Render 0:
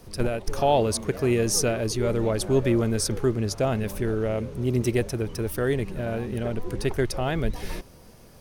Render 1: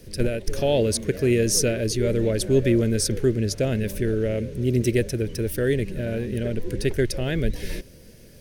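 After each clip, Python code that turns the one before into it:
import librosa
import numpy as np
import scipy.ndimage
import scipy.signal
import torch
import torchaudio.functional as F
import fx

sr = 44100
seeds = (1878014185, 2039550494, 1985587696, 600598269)

y = fx.band_shelf(x, sr, hz=960.0, db=-14.5, octaves=1.1)
y = y * librosa.db_to_amplitude(2.5)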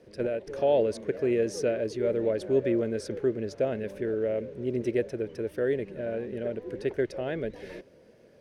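y = fx.bandpass_q(x, sr, hz=720.0, q=1.0)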